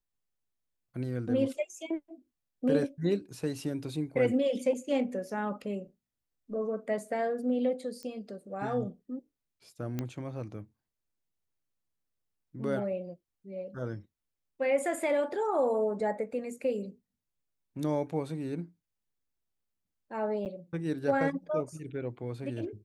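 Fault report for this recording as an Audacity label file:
8.030000	8.030000	pop -28 dBFS
9.990000	9.990000	pop -20 dBFS
20.450000	20.460000	dropout 8.8 ms

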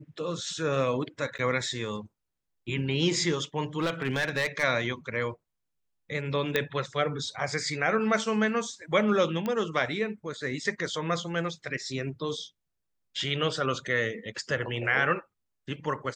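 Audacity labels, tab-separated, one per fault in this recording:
1.380000	1.390000	dropout 9.3 ms
3.780000	4.640000	clipped -22.5 dBFS
6.560000	6.560000	pop -11 dBFS
9.460000	9.460000	pop -18 dBFS

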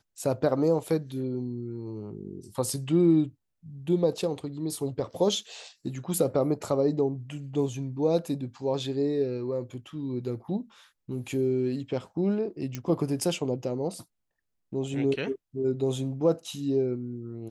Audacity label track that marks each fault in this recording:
12.750000	12.750000	pop -18 dBFS

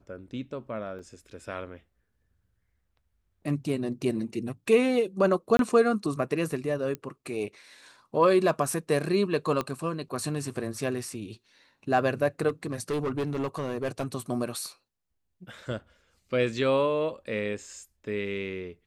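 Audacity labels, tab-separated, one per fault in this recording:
0.990000	0.990000	dropout 2.8 ms
5.570000	5.590000	dropout 22 ms
6.950000	6.950000	pop -20 dBFS
9.610000	9.610000	pop -16 dBFS
12.480000	14.060000	clipped -25 dBFS

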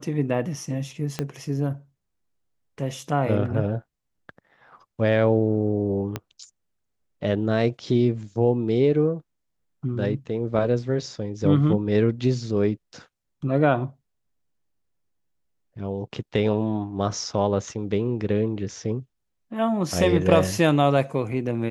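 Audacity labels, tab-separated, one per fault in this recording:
1.190000	1.190000	pop -12 dBFS
6.160000	6.160000	pop -13 dBFS

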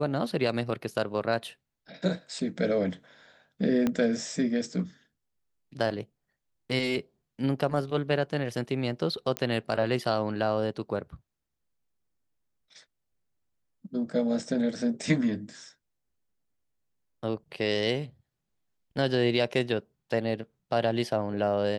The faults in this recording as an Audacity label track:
3.870000	3.870000	pop -14 dBFS
9.370000	9.370000	pop -13 dBFS

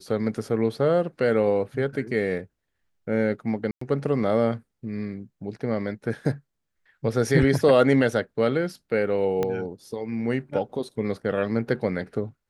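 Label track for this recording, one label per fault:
3.710000	3.810000	dropout 104 ms
9.430000	9.430000	pop -13 dBFS

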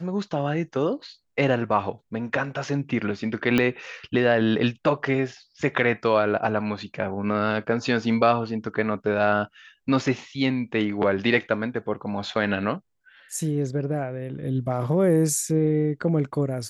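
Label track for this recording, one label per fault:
3.580000	3.580000	pop -8 dBFS

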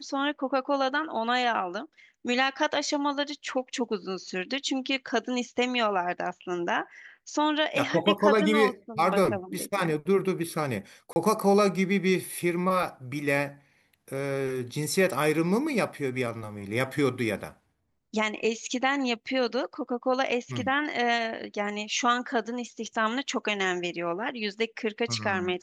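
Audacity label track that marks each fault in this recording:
11.130000	11.160000	dropout 30 ms

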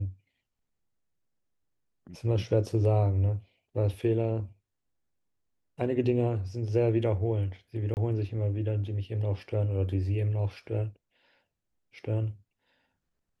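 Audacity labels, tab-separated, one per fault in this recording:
7.940000	7.970000	dropout 29 ms

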